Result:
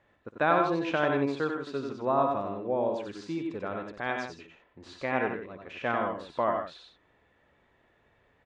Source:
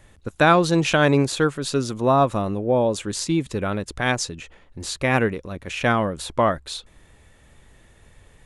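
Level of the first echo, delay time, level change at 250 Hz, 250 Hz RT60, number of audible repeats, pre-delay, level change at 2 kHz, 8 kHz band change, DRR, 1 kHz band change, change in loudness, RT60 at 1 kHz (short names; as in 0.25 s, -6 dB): -16.5 dB, 58 ms, -10.0 dB, none, 3, none, -9.0 dB, under -25 dB, none, -7.0 dB, -8.5 dB, none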